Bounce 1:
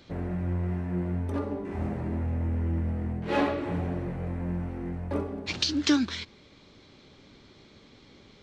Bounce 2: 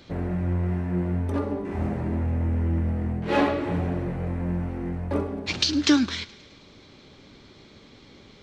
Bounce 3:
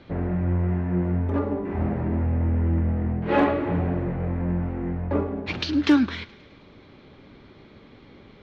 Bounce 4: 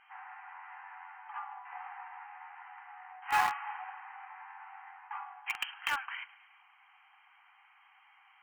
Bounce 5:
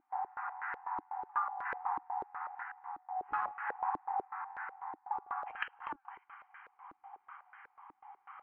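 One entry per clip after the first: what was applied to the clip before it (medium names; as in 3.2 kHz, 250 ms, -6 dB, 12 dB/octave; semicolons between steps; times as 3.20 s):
thinning echo 106 ms, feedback 65%, high-pass 780 Hz, level -19.5 dB; trim +4 dB
low-pass 2.4 kHz 12 dB/octave; hard clipper -12.5 dBFS, distortion -30 dB; trim +2 dB
FFT band-pass 730–3200 Hz; in parallel at -9.5 dB: bit crusher 4-bit; on the sum: trim -4.5 dB
compression 12:1, threshold -41 dBFS, peak gain reduction 18.5 dB; random-step tremolo 1.9 Hz; step-sequenced low-pass 8.1 Hz 310–1600 Hz; trim +7 dB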